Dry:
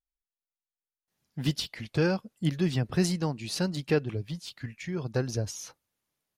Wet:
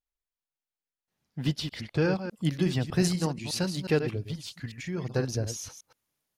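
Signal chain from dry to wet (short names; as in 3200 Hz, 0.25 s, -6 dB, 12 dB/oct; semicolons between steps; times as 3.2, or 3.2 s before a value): reverse delay 0.121 s, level -8.5 dB; high shelf 5600 Hz -7.5 dB, from 2.3 s +2.5 dB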